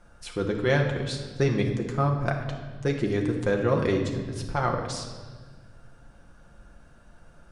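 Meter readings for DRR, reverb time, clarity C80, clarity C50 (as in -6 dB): 1.0 dB, 1.5 s, 7.5 dB, 6.0 dB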